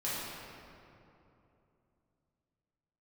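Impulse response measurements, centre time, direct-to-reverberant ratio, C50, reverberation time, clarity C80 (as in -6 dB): 0.164 s, -10.0 dB, -3.5 dB, 2.9 s, -1.0 dB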